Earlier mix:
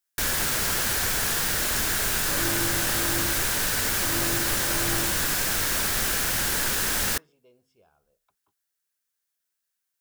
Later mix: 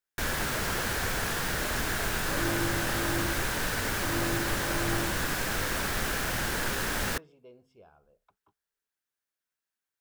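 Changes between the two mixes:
speech +7.0 dB; master: add high shelf 3400 Hz -11.5 dB

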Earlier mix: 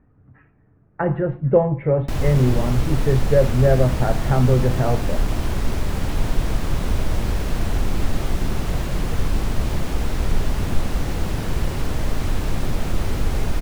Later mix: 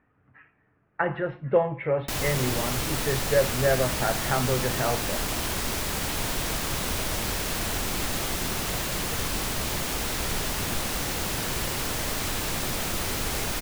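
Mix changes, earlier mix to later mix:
speech: add tilt shelf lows -4 dB, about 1200 Hz; master: add tilt +3 dB/oct

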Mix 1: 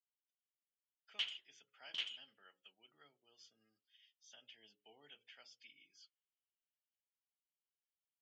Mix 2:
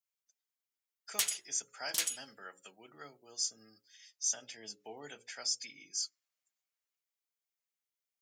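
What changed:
speech +6.0 dB; master: remove ladder low-pass 3200 Hz, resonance 80%

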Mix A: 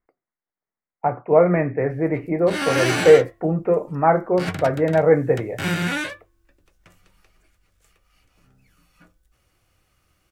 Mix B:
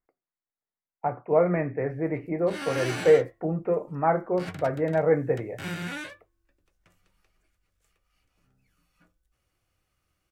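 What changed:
speech -6.5 dB; background -10.5 dB

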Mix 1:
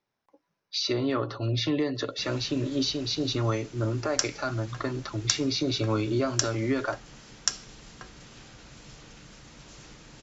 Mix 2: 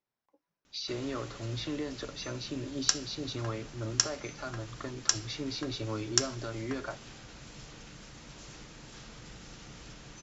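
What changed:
speech -9.0 dB; background: entry -1.30 s

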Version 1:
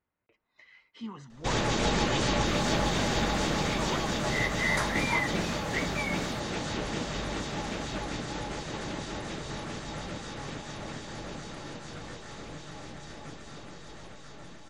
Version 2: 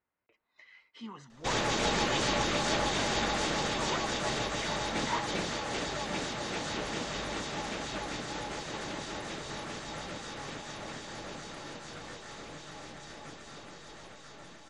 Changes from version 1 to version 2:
second sound: muted; master: add low shelf 260 Hz -8.5 dB

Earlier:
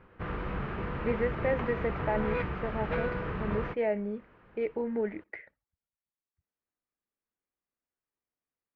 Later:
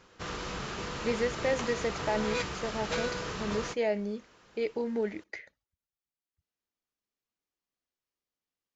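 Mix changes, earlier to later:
background: add low shelf 200 Hz -8.5 dB; master: remove LPF 2300 Hz 24 dB/oct

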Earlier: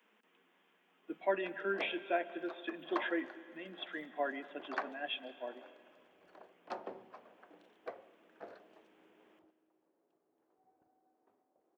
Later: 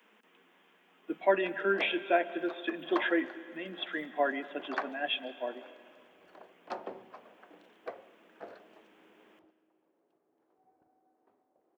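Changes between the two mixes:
speech +7.0 dB; background +3.5 dB

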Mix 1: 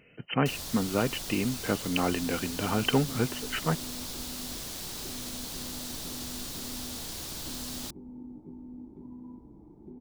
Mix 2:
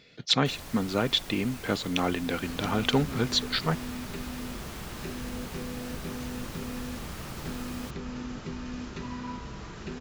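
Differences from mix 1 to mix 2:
speech: remove brick-wall FIR low-pass 3100 Hz; second sound: remove vocal tract filter u; master: add resonant high shelf 3000 Hz -8 dB, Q 1.5

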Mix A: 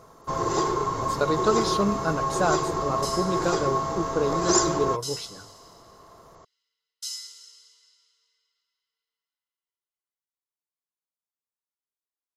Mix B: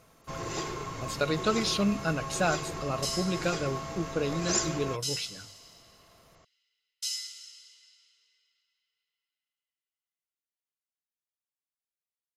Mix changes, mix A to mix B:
first sound -5.5 dB; master: add fifteen-band EQ 400 Hz -7 dB, 1000 Hz -9 dB, 2500 Hz +10 dB

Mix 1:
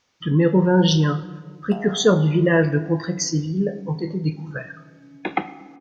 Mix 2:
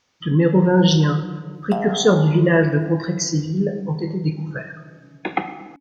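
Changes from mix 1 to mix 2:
speech: send +6.0 dB; first sound +10.0 dB; second sound: send off

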